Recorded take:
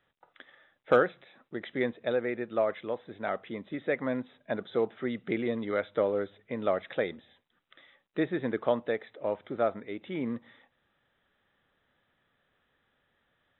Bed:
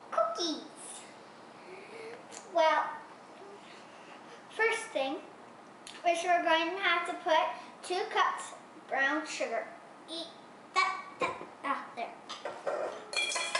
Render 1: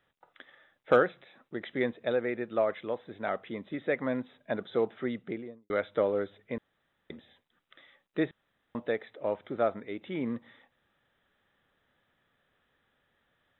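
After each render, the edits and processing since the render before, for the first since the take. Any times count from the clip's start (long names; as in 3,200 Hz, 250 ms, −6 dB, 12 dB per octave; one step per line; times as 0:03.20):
0:05.00–0:05.70: fade out and dull
0:06.58–0:07.10: fill with room tone
0:08.31–0:08.75: fill with room tone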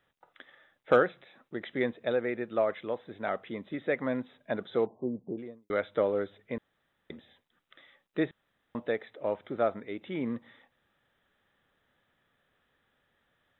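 0:04.86–0:05.38: linear-phase brick-wall low-pass 1,100 Hz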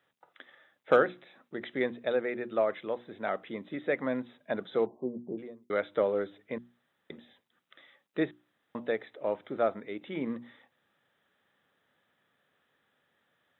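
high-pass filter 130 Hz 12 dB per octave
mains-hum notches 60/120/180/240/300/360 Hz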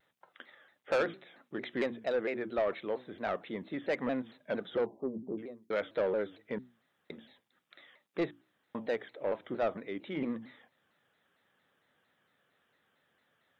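soft clipping −24 dBFS, distortion −10 dB
pitch modulation by a square or saw wave saw down 4.4 Hz, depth 160 cents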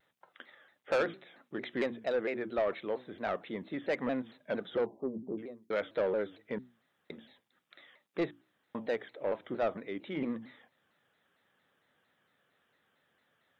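no processing that can be heard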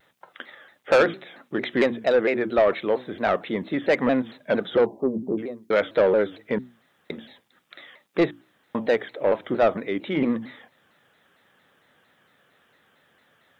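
level +12 dB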